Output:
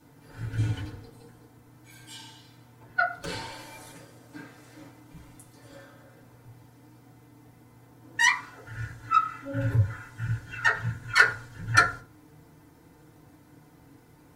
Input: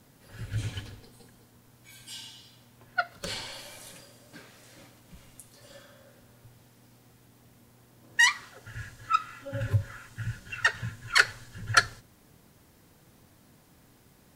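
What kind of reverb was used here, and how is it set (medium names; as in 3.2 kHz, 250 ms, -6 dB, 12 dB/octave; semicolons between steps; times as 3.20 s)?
FDN reverb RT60 0.35 s, low-frequency decay 1×, high-frequency decay 0.3×, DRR -8.5 dB; trim -6.5 dB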